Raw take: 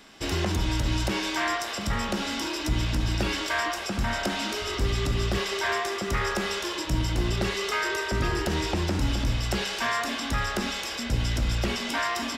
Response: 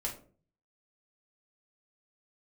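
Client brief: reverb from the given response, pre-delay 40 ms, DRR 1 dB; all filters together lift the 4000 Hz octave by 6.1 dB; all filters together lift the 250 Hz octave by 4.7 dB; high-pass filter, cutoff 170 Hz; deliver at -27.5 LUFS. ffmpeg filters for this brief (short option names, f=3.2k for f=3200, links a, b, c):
-filter_complex "[0:a]highpass=170,equalizer=f=250:t=o:g=7.5,equalizer=f=4k:t=o:g=8,asplit=2[a][b];[1:a]atrim=start_sample=2205,adelay=40[c];[b][c]afir=irnorm=-1:irlink=0,volume=-3dB[d];[a][d]amix=inputs=2:normalize=0,volume=-4.5dB"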